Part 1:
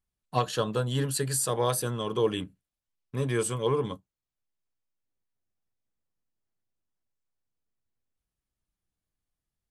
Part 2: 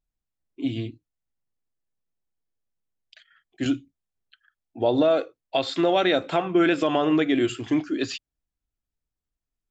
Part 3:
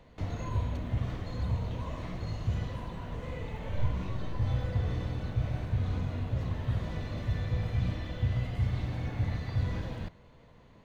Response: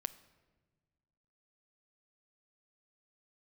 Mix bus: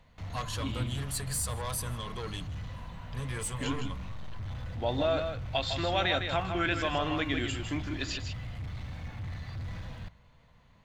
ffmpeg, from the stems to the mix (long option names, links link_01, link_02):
-filter_complex "[0:a]asoftclip=type=tanh:threshold=-24dB,volume=-2dB,asplit=2[link_01][link_02];[link_02]volume=-22.5dB[link_03];[1:a]volume=-3dB,asplit=2[link_04][link_05];[link_05]volume=-7dB[link_06];[2:a]bandreject=frequency=60:width_type=h:width=6,bandreject=frequency=120:width_type=h:width=6,asoftclip=type=hard:threshold=-32.5dB,volume=-1dB[link_07];[link_03][link_06]amix=inputs=2:normalize=0,aecho=0:1:157:1[link_08];[link_01][link_04][link_07][link_08]amix=inputs=4:normalize=0,equalizer=frequency=370:width=1:gain=-12.5"